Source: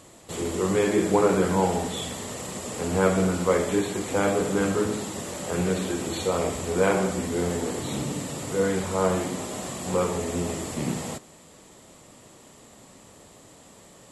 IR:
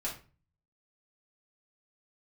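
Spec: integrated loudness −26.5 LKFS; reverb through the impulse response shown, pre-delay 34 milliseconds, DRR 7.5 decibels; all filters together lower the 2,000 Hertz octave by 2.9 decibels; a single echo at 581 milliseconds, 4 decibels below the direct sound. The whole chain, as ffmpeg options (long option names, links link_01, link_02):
-filter_complex "[0:a]equalizer=frequency=2000:width_type=o:gain=-4,aecho=1:1:581:0.631,asplit=2[link_01][link_02];[1:a]atrim=start_sample=2205,adelay=34[link_03];[link_02][link_03]afir=irnorm=-1:irlink=0,volume=-10dB[link_04];[link_01][link_04]amix=inputs=2:normalize=0,volume=-2dB"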